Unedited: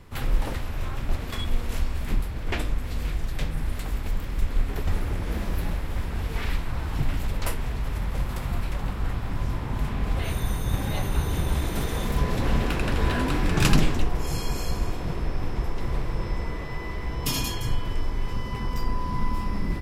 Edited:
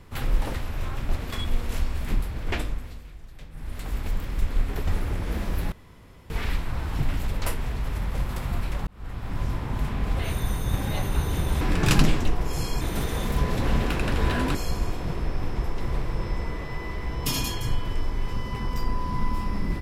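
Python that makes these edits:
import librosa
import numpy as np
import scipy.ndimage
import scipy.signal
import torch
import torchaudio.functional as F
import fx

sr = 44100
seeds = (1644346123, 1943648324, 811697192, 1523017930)

y = fx.edit(x, sr, fx.fade_down_up(start_s=2.54, length_s=1.45, db=-15.5, fade_s=0.49),
    fx.room_tone_fill(start_s=5.72, length_s=0.58),
    fx.fade_in_span(start_s=8.87, length_s=0.53),
    fx.move(start_s=13.35, length_s=1.2, to_s=11.61), tone=tone)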